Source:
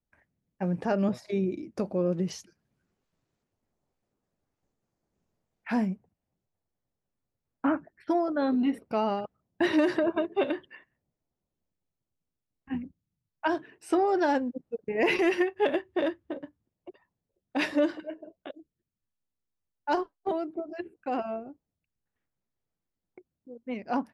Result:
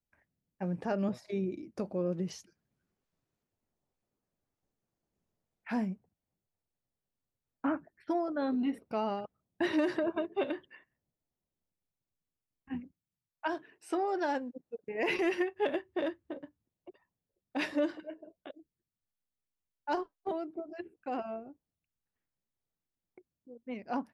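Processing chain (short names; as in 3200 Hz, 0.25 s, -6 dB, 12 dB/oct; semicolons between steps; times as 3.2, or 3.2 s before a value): 12.8–15.08 low shelf 240 Hz -8 dB; gain -5.5 dB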